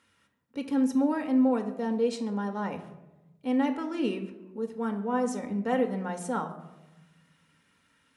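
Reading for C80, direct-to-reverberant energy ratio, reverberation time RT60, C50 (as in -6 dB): 13.5 dB, 4.5 dB, 1.0 s, 11.0 dB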